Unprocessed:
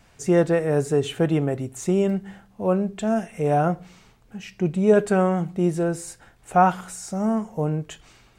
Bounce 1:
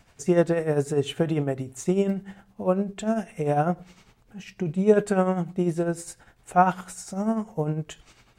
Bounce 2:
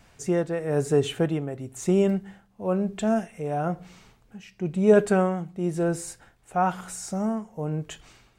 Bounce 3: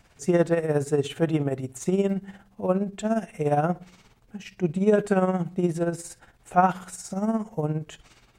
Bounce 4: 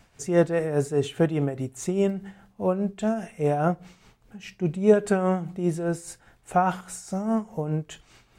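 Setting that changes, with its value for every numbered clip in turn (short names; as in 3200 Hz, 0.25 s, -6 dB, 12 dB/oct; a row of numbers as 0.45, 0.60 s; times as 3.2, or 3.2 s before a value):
tremolo, rate: 10, 1, 17, 4.9 Hz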